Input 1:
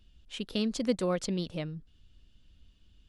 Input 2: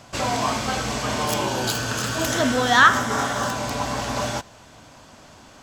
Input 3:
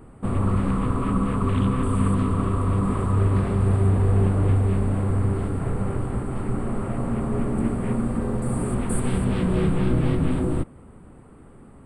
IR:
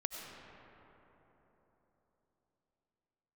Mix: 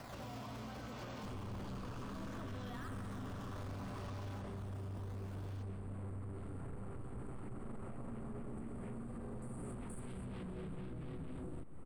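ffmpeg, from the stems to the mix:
-filter_complex "[0:a]volume=-5dB[a];[1:a]lowpass=5.2k,acrossover=split=260|1800[b][c][d];[b]acompressor=threshold=-32dB:ratio=4[e];[c]acompressor=threshold=-36dB:ratio=4[f];[d]acompressor=threshold=-42dB:ratio=4[g];[e][f][g]amix=inputs=3:normalize=0,alimiter=level_in=2.5dB:limit=-24dB:level=0:latency=1,volume=-2.5dB,volume=-3.5dB,asplit=2[h][i];[i]volume=-4.5dB[j];[2:a]alimiter=limit=-20dB:level=0:latency=1:release=194,adelay=1000,volume=-7.5dB,asplit=2[k][l];[l]volume=-22.5dB[m];[a][h]amix=inputs=2:normalize=0,acrusher=samples=12:mix=1:aa=0.000001:lfo=1:lforange=19.2:lforate=0.67,acompressor=threshold=-45dB:ratio=4,volume=0dB[n];[3:a]atrim=start_sample=2205[o];[j][m]amix=inputs=2:normalize=0[p];[p][o]afir=irnorm=-1:irlink=0[q];[k][n][q]amix=inputs=3:normalize=0,asoftclip=type=tanh:threshold=-31.5dB,alimiter=level_in=16dB:limit=-24dB:level=0:latency=1:release=155,volume=-16dB"

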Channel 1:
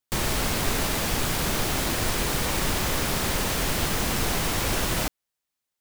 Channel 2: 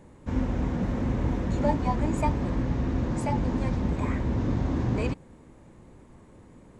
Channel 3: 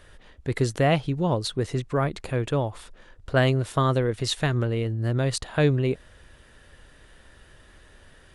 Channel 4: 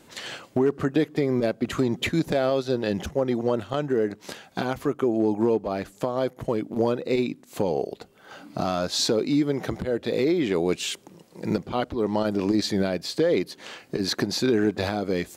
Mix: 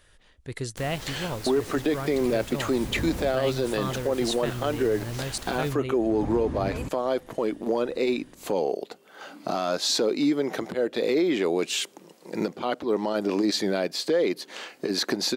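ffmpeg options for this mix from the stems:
-filter_complex "[0:a]adelay=650,volume=-16.5dB[a];[1:a]adelay=1750,volume=-5dB[b];[2:a]highshelf=f=2.6k:g=9,volume=-9.5dB,asplit=2[c][d];[3:a]highpass=270,adelay=900,volume=2dB[e];[d]apad=whole_len=376662[f];[b][f]sidechaincompress=threshold=-48dB:ratio=8:attack=16:release=248[g];[a][g][c][e]amix=inputs=4:normalize=0,alimiter=limit=-15.5dB:level=0:latency=1:release=24"

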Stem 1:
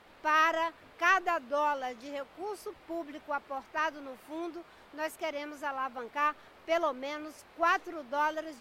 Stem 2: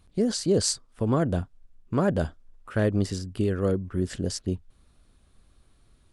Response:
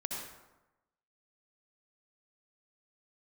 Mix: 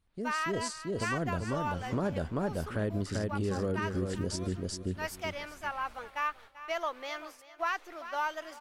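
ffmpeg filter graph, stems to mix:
-filter_complex "[0:a]agate=range=-33dB:threshold=-43dB:ratio=3:detection=peak,equalizer=f=160:w=0.36:g=-15,volume=-1.5dB,asplit=2[a][b];[b]volume=-17.5dB[c];[1:a]dynaudnorm=f=130:g=5:m=13dB,volume=-16.5dB,asplit=2[d][e];[e]volume=-4.5dB[f];[c][f]amix=inputs=2:normalize=0,aecho=0:1:388|776|1164|1552:1|0.29|0.0841|0.0244[g];[a][d][g]amix=inputs=3:normalize=0,dynaudnorm=f=120:g=17:m=4dB,alimiter=limit=-22.5dB:level=0:latency=1:release=249"

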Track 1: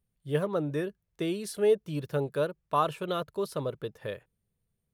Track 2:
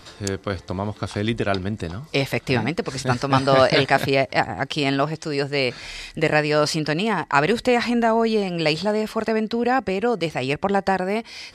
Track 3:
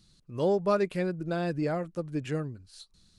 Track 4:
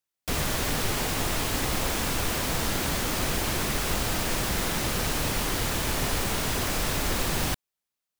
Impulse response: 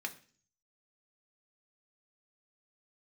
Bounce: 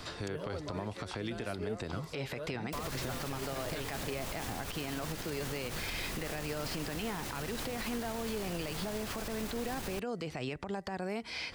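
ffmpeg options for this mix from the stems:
-filter_complex "[0:a]volume=-13.5dB[a];[1:a]acompressor=threshold=-26dB:ratio=6,acrossover=split=300|4300[b][c][d];[b]acompressor=threshold=-38dB:ratio=4[e];[c]acompressor=threshold=-35dB:ratio=4[f];[d]acompressor=threshold=-54dB:ratio=4[g];[e][f][g]amix=inputs=3:normalize=0,volume=0.5dB[h];[2:a]highpass=600,acompressor=threshold=-33dB:ratio=6,volume=-9.5dB[i];[3:a]alimiter=limit=-21.5dB:level=0:latency=1:release=45,adelay=2450,volume=-8dB[j];[a][h][i][j]amix=inputs=4:normalize=0,alimiter=level_in=3.5dB:limit=-24dB:level=0:latency=1:release=68,volume=-3.5dB"

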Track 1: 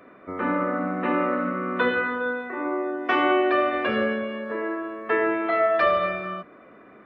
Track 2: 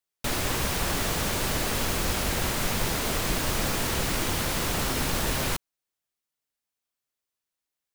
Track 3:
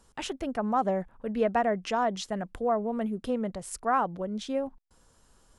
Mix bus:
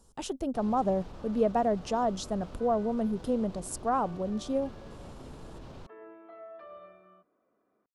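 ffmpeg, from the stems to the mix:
-filter_complex "[0:a]lowshelf=f=400:g=-9,adelay=800,volume=-19.5dB[a];[1:a]adelay=300,volume=-13.5dB[b];[2:a]volume=1.5dB[c];[a][b]amix=inputs=2:normalize=0,lowpass=2.7k,alimiter=level_in=11.5dB:limit=-24dB:level=0:latency=1:release=27,volume=-11.5dB,volume=0dB[d];[c][d]amix=inputs=2:normalize=0,equalizer=f=2k:w=1:g=-14"

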